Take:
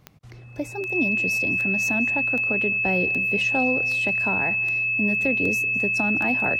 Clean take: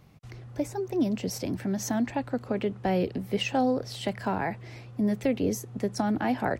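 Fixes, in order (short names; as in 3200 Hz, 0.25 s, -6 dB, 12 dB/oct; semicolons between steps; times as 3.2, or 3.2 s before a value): de-click; notch 2600 Hz, Q 30; inverse comb 0.209 s -22.5 dB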